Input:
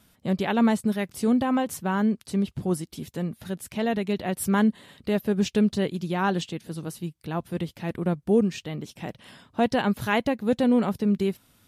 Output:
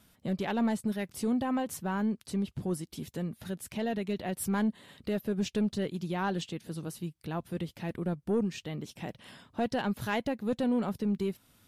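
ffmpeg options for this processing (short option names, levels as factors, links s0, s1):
-filter_complex "[0:a]asplit=2[s0][s1];[s1]acompressor=threshold=0.0251:ratio=6,volume=0.75[s2];[s0][s2]amix=inputs=2:normalize=0,asoftclip=type=tanh:threshold=0.224,volume=0.422"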